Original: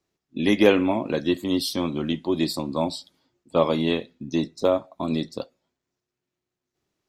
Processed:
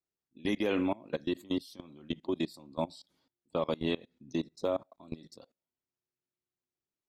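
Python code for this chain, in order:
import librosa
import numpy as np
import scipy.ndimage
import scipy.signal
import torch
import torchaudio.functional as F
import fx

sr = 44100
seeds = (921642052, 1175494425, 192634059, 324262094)

y = fx.level_steps(x, sr, step_db=23)
y = F.gain(torch.from_numpy(y), -6.0).numpy()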